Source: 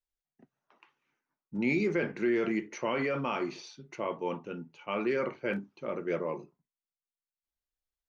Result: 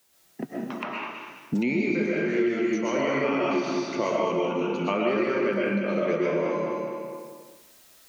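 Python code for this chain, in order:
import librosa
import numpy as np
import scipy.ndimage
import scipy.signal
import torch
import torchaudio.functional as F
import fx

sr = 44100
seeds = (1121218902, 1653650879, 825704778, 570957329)

y = scipy.signal.sosfilt(scipy.signal.butter(2, 190.0, 'highpass', fs=sr, output='sos'), x)
y = fx.high_shelf(y, sr, hz=4800.0, db=4.5)
y = fx.echo_feedback(y, sr, ms=206, feedback_pct=24, wet_db=-9.0)
y = fx.rev_freeverb(y, sr, rt60_s=0.91, hf_ratio=0.85, predelay_ms=85, drr_db=-5.0)
y = fx.rider(y, sr, range_db=10, speed_s=2.0)
y = fx.low_shelf(y, sr, hz=250.0, db=8.0)
y = fx.band_squash(y, sr, depth_pct=100)
y = y * 10.0 ** (-2.0 / 20.0)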